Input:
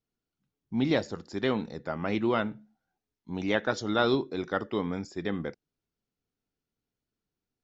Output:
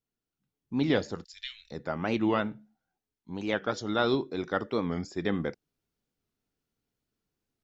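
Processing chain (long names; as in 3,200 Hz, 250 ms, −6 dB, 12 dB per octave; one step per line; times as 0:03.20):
0:01.24–0:01.71: inverse Chebyshev band-stop filter 130–850 Hz, stop band 60 dB
speech leveller within 5 dB 2 s
wow of a warped record 45 rpm, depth 160 cents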